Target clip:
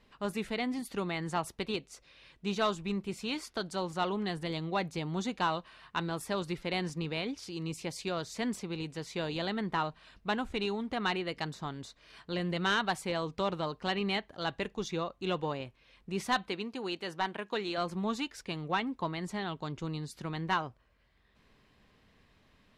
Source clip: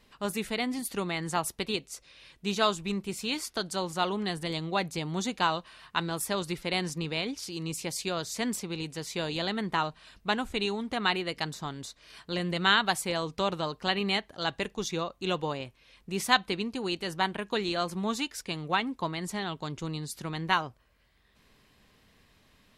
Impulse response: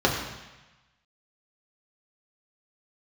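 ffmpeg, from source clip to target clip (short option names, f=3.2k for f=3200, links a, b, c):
-filter_complex "[0:a]asettb=1/sr,asplit=3[a][b][c];[a]atrim=end=16.484[d];[b]atrim=start=16.48:end=17.78,asetpts=PTS-STARTPTS,afade=t=in:d=0.004:c=qsin,afade=t=out:st=1.296:d=0.004:c=qsin,highpass=f=310:p=1[e];[c]atrim=start=17.776[f];[d][e]acrossfade=d=0.004:c1=hsin:c2=qsin[g];[g][f]acrossfade=d=0.004:c1=qsin:c2=hsin,asoftclip=type=tanh:threshold=-17.5dB,aemphasis=mode=reproduction:type=50kf,volume=-1.5dB"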